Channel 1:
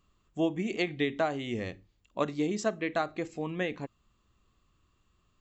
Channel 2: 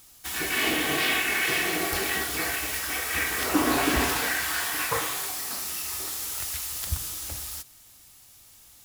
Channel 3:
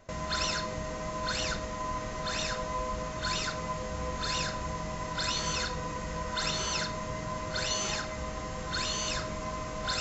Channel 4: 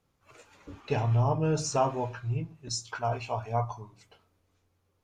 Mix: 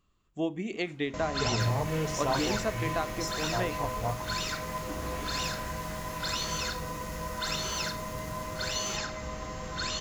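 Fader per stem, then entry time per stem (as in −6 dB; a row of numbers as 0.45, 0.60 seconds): −2.5, −18.5, −1.0, −4.5 decibels; 0.00, 1.35, 1.05, 0.50 seconds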